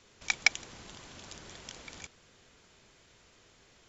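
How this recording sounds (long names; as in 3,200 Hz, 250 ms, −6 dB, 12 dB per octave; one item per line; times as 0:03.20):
background noise floor −63 dBFS
spectral slope 0.0 dB per octave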